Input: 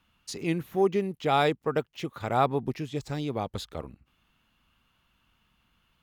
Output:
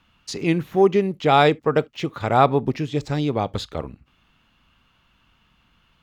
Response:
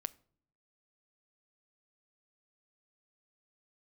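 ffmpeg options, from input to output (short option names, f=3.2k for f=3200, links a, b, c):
-filter_complex "[0:a]asplit=2[a][b];[1:a]atrim=start_sample=2205,atrim=end_sample=3528,lowpass=7.6k[c];[b][c]afir=irnorm=-1:irlink=0,volume=5.5dB[d];[a][d]amix=inputs=2:normalize=0"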